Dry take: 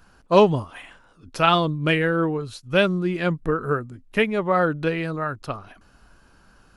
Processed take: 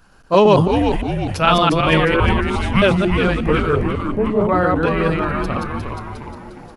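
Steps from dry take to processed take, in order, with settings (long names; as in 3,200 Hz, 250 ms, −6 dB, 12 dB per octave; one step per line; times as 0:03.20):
delay that plays each chunk backwards 113 ms, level −0.5 dB
0:02.20–0:02.82: frequency shifter −390 Hz
0:03.75–0:04.49: Butterworth low-pass 1,000 Hz
echo with shifted repeats 356 ms, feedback 55%, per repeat −130 Hz, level −5.5 dB
level that may fall only so fast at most 50 dB per second
level +1.5 dB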